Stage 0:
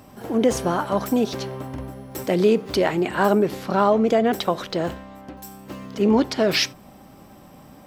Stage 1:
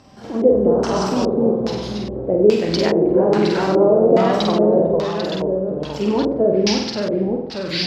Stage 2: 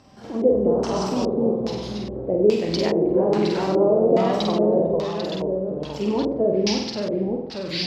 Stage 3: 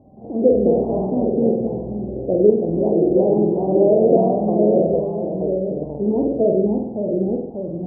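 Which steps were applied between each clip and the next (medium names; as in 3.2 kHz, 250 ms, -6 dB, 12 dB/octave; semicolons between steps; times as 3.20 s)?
ever faster or slower copies 189 ms, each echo -1 st, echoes 3; flutter echo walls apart 8.2 m, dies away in 0.78 s; LFO low-pass square 1.2 Hz 510–5200 Hz; trim -2.5 dB
dynamic bell 1.5 kHz, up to -6 dB, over -43 dBFS, Q 2.7; trim -4 dB
elliptic low-pass 730 Hz, stop band 60 dB; trim +4 dB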